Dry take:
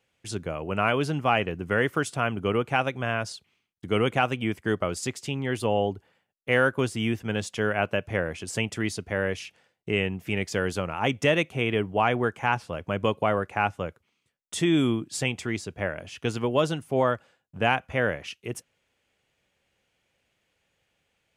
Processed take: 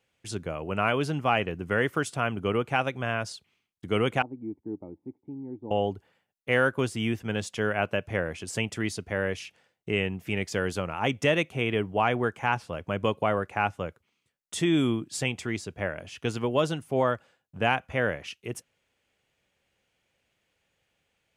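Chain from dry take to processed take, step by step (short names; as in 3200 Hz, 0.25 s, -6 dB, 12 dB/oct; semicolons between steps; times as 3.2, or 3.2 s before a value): 4.22–5.71 vocal tract filter u; gain -1.5 dB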